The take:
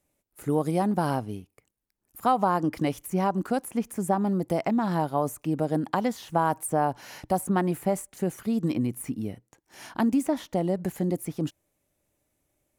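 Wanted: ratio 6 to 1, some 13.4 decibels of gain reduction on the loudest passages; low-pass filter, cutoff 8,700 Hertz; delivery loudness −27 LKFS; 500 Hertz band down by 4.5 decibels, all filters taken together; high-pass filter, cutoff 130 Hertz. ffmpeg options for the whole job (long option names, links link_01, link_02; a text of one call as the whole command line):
ffmpeg -i in.wav -af "highpass=130,lowpass=8700,equalizer=frequency=500:width_type=o:gain=-6,acompressor=threshold=-36dB:ratio=6,volume=13.5dB" out.wav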